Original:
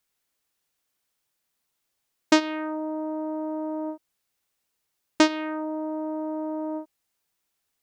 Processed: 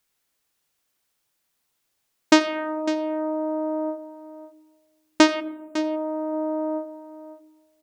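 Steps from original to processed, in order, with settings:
time-frequency box erased 0:05.40–0:05.78, 280–6,900 Hz
on a send: single-tap delay 553 ms −14 dB
on the sum: comb and all-pass reverb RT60 1.4 s, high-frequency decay 0.3×, pre-delay 30 ms, DRR 16.5 dB
level +3.5 dB

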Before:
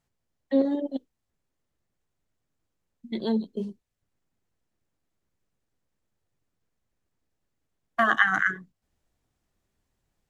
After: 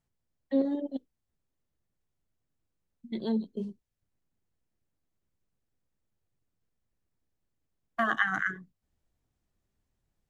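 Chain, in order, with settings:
low-shelf EQ 280 Hz +5.5 dB
level −6.5 dB

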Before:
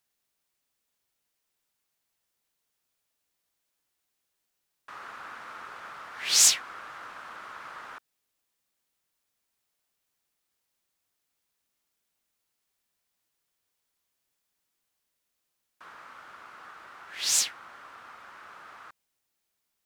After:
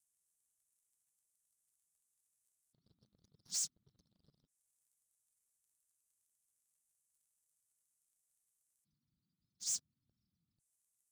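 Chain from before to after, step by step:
gate on every frequency bin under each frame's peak −25 dB strong
treble cut that deepens with the level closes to 2,700 Hz, closed at −33 dBFS
low-pass filter 11,000 Hz 24 dB per octave
time-frequency box erased 0:00.76–0:01.99, 750–5,000 Hz
phase-vocoder stretch with locked phases 0.56×
inverse Chebyshev band-stop filter 490–2,700 Hz, stop band 60 dB
bass and treble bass −6 dB, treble +8 dB
brickwall limiter −35 dBFS, peak gain reduction 10 dB
leveller curve on the samples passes 3
level +3.5 dB

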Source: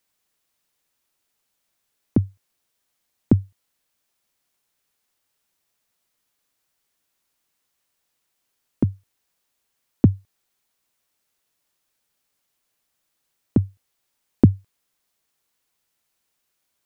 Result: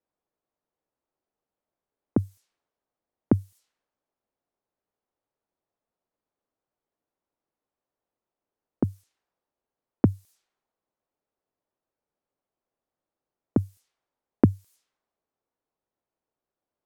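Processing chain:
bass and treble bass −7 dB, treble +13 dB
low-pass that shuts in the quiet parts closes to 670 Hz, open at −28.5 dBFS

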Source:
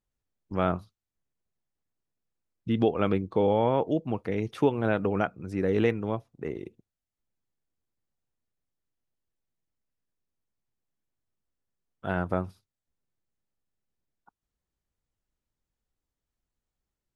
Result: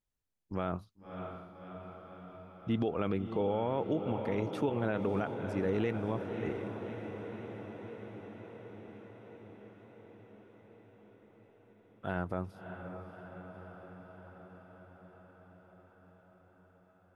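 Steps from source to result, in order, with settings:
on a send: feedback delay with all-pass diffusion 600 ms, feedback 72%, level −11 dB
on the sum: brickwall limiter −17.5 dBFS, peak gain reduction 7 dB
level −4 dB

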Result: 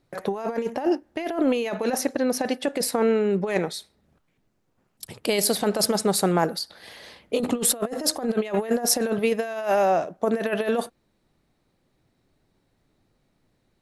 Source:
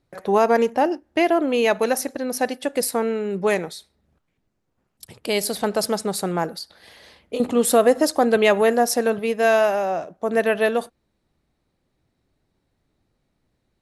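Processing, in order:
parametric band 63 Hz −13 dB 0.42 octaves
compressor whose output falls as the input rises −22 dBFS, ratio −0.5
0:01.74–0:03.74: high-shelf EQ 8,500 Hz −10.5 dB

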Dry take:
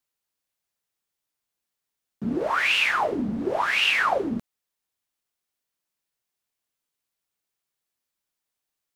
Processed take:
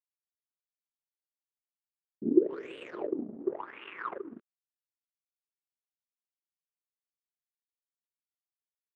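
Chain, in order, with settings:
downsampling to 8,000 Hz
power curve on the samples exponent 2
low shelf with overshoot 520 Hz +12 dB, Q 3
band-pass filter sweep 230 Hz → 2,800 Hz, 0:01.53–0:05.52
0:03.14–0:04.37: high-frequency loss of the air 370 metres
wow of a warped record 33 1/3 rpm, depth 100 cents

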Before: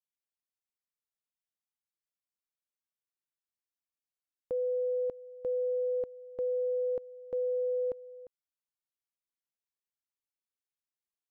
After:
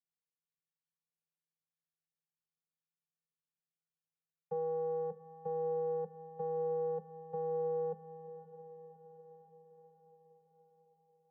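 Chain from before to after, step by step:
channel vocoder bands 8, square 161 Hz
elliptic band-stop filter 200–430 Hz
feedback delay with all-pass diffusion 593 ms, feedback 60%, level −13.5 dB
on a send at −17.5 dB: convolution reverb RT60 0.45 s, pre-delay 3 ms
on the sum: level −3.5 dB

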